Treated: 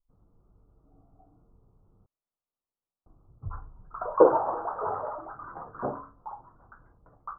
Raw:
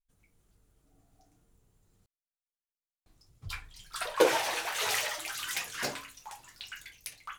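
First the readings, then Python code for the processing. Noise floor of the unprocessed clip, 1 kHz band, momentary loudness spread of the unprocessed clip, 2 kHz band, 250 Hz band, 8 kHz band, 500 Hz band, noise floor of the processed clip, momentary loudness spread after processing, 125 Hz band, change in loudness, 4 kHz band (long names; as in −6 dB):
below −85 dBFS, +6.0 dB, 20 LU, −14.5 dB, +6.5 dB, below −40 dB, +6.5 dB, below −85 dBFS, 23 LU, +6.5 dB, +4.0 dB, below −40 dB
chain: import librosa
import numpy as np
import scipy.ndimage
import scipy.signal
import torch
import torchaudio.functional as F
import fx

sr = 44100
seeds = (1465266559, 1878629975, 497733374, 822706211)

y = scipy.signal.sosfilt(scipy.signal.butter(12, 1300.0, 'lowpass', fs=sr, output='sos'), x)
y = y * librosa.db_to_amplitude(6.5)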